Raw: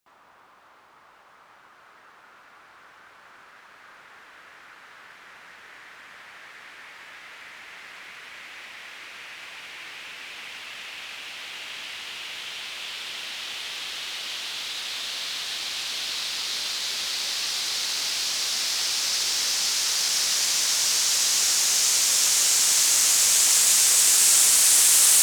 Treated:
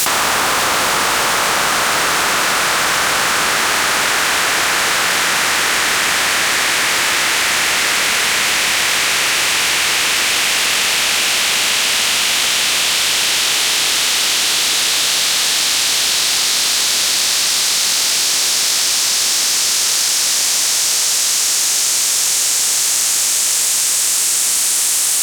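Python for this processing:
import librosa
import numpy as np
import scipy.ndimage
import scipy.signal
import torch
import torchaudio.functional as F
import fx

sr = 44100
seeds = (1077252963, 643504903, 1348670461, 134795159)

p1 = fx.bin_compress(x, sr, power=0.6)
p2 = p1 + fx.echo_filtered(p1, sr, ms=145, feedback_pct=82, hz=1200.0, wet_db=-5, dry=0)
p3 = fx.env_flatten(p2, sr, amount_pct=100)
y = p3 * 10.0 ** (-1.5 / 20.0)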